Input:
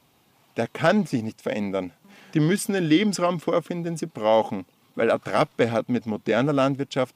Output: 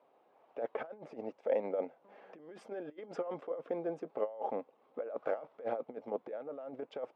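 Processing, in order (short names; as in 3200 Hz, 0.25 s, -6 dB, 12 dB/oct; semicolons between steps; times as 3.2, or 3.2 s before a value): negative-ratio compressor -27 dBFS, ratio -0.5; ladder band-pass 630 Hz, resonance 45%; gain +3 dB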